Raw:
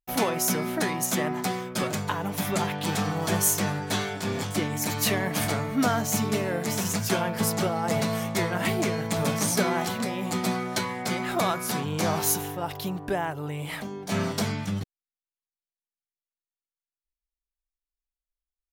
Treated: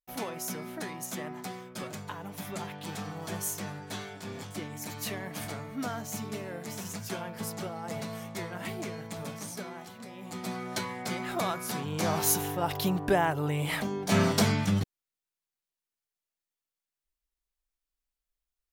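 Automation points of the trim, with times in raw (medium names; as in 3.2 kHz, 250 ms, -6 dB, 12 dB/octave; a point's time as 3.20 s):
8.98 s -11 dB
9.92 s -18 dB
10.73 s -5.5 dB
11.78 s -5.5 dB
12.83 s +3 dB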